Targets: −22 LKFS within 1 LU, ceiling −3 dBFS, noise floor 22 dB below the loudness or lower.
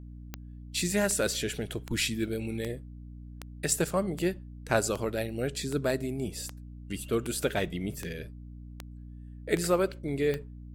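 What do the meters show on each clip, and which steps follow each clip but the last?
number of clicks 14; mains hum 60 Hz; hum harmonics up to 300 Hz; level of the hum −42 dBFS; integrated loudness −31.0 LKFS; sample peak −10.5 dBFS; target loudness −22.0 LKFS
→ click removal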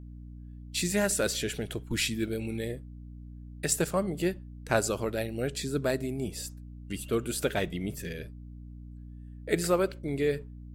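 number of clicks 0; mains hum 60 Hz; hum harmonics up to 300 Hz; level of the hum −42 dBFS
→ hum removal 60 Hz, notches 5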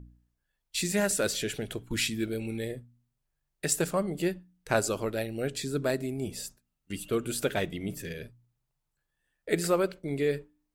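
mains hum none found; integrated loudness −31.0 LKFS; sample peak −10.5 dBFS; target loudness −22.0 LKFS
→ level +9 dB
brickwall limiter −3 dBFS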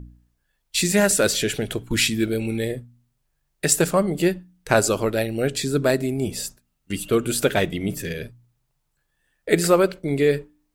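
integrated loudness −22.0 LKFS; sample peak −3.0 dBFS; background noise floor −73 dBFS

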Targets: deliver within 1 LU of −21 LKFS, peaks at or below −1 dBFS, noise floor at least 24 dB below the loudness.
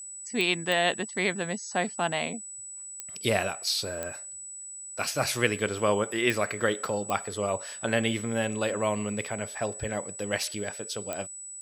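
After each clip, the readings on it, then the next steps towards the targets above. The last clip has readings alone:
number of clicks 7; interfering tone 7,900 Hz; level of the tone −39 dBFS; integrated loudness −29.5 LKFS; sample peak −7.5 dBFS; target loudness −21.0 LKFS
→ click removal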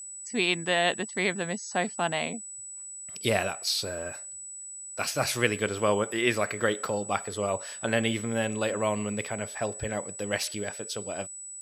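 number of clicks 0; interfering tone 7,900 Hz; level of the tone −39 dBFS
→ notch filter 7,900 Hz, Q 30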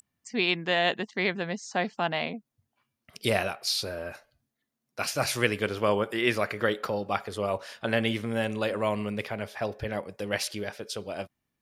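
interfering tone none found; integrated loudness −29.5 LKFS; sample peak −7.5 dBFS; target loudness −21.0 LKFS
→ level +8.5 dB
brickwall limiter −1 dBFS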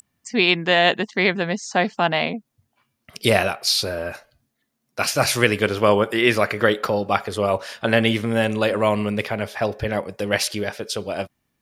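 integrated loudness −21.0 LKFS; sample peak −1.0 dBFS; background noise floor −75 dBFS

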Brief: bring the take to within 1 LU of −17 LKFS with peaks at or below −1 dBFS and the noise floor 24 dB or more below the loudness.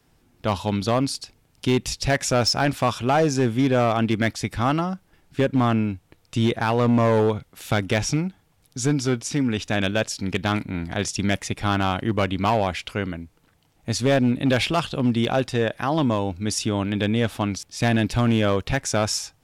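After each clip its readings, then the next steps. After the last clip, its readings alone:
share of clipped samples 1.4%; peaks flattened at −13.5 dBFS; integrated loudness −23.0 LKFS; sample peak −13.5 dBFS; target loudness −17.0 LKFS
→ clipped peaks rebuilt −13.5 dBFS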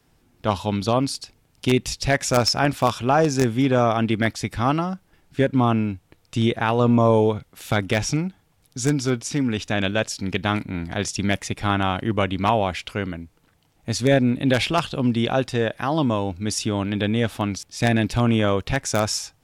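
share of clipped samples 0.0%; integrated loudness −22.5 LKFS; sample peak −4.5 dBFS; target loudness −17.0 LKFS
→ level +5.5 dB
brickwall limiter −1 dBFS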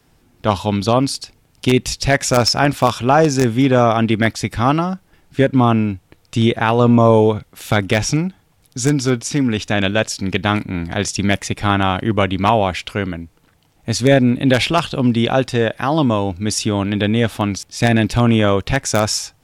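integrated loudness −17.0 LKFS; sample peak −1.0 dBFS; background noise floor −57 dBFS

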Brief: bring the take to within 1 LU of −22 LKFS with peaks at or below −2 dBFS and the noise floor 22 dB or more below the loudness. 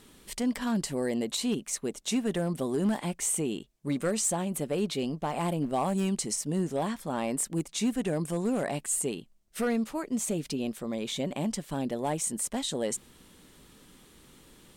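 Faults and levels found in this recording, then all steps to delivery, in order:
share of clipped samples 0.4%; peaks flattened at −21.0 dBFS; integrated loudness −30.5 LKFS; sample peak −21.0 dBFS; target loudness −22.0 LKFS
→ clipped peaks rebuilt −21 dBFS
level +8.5 dB

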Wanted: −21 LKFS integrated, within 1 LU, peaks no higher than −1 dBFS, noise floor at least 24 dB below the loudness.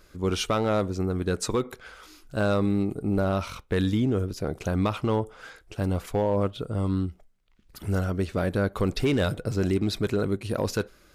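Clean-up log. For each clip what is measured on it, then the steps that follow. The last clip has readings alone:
share of clipped samples 0.6%; peaks flattened at −17.0 dBFS; integrated loudness −27.0 LKFS; sample peak −17.0 dBFS; target loudness −21.0 LKFS
→ clipped peaks rebuilt −17 dBFS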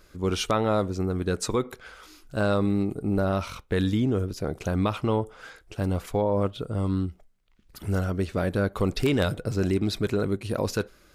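share of clipped samples 0.0%; integrated loudness −27.0 LKFS; sample peak −9.0 dBFS; target loudness −21.0 LKFS
→ level +6 dB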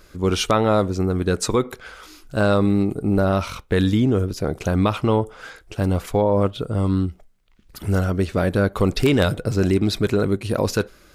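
integrated loudness −21.0 LKFS; sample peak −3.0 dBFS; background noise floor −52 dBFS

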